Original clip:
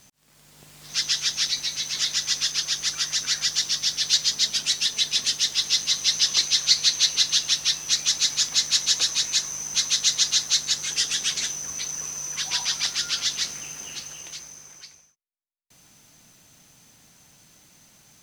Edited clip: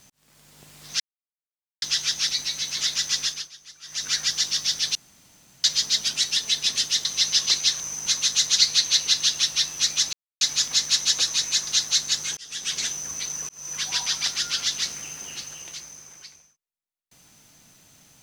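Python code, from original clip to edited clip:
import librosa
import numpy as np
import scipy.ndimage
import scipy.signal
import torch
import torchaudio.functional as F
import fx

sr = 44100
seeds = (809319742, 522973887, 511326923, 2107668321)

y = fx.edit(x, sr, fx.insert_silence(at_s=1.0, length_s=0.82),
    fx.fade_down_up(start_s=2.4, length_s=0.89, db=-19.5, fade_s=0.28),
    fx.insert_room_tone(at_s=4.13, length_s=0.69),
    fx.cut(start_s=5.54, length_s=0.38),
    fx.insert_silence(at_s=8.22, length_s=0.28),
    fx.move(start_s=9.48, length_s=0.78, to_s=6.67),
    fx.fade_in_span(start_s=10.96, length_s=0.44),
    fx.fade_in_span(start_s=12.08, length_s=0.25), tone=tone)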